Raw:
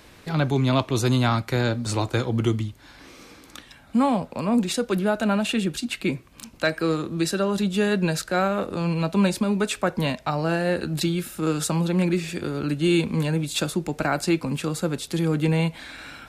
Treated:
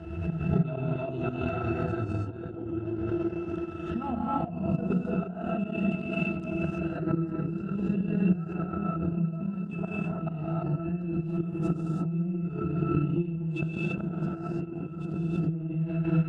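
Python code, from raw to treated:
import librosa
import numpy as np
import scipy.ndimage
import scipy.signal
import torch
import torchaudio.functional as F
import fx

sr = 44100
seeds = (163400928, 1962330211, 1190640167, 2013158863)

p1 = fx.octave_resonator(x, sr, note='E', decay_s=0.16)
p2 = p1 + fx.echo_tape(p1, sr, ms=212, feedback_pct=77, wet_db=-12.0, lp_hz=5500.0, drive_db=18.0, wow_cents=6, dry=0)
p3 = fx.gate_flip(p2, sr, shuts_db=-28.0, range_db=-25)
p4 = scipy.signal.sosfilt(scipy.signal.butter(2, 12000.0, 'lowpass', fs=sr, output='sos'), p3)
p5 = fx.low_shelf(p4, sr, hz=170.0, db=8.0)
p6 = fx.over_compress(p5, sr, threshold_db=-45.0, ratio=-0.5)
p7 = p5 + (p6 * 10.0 ** (2.0 / 20.0))
p8 = scipy.signal.sosfilt(scipy.signal.butter(4, 69.0, 'highpass', fs=sr, output='sos'), p7)
p9 = fx.peak_eq(p8, sr, hz=4000.0, db=-6.0, octaves=0.39)
p10 = fx.rev_gated(p9, sr, seeds[0], gate_ms=360, shape='rising', drr_db=-7.0)
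p11 = fx.transient(p10, sr, attack_db=5, sustain_db=-8)
y = fx.pre_swell(p11, sr, db_per_s=53.0)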